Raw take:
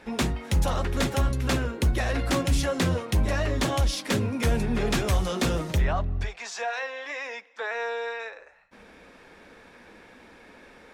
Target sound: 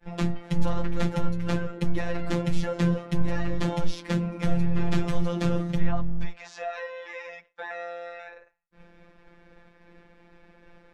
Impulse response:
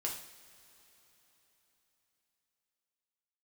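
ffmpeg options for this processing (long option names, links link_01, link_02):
-af "aemphasis=mode=reproduction:type=bsi,agate=range=-33dB:threshold=-43dB:ratio=3:detection=peak,afftfilt=real='hypot(re,im)*cos(PI*b)':imag='0':win_size=1024:overlap=0.75,volume=-1dB"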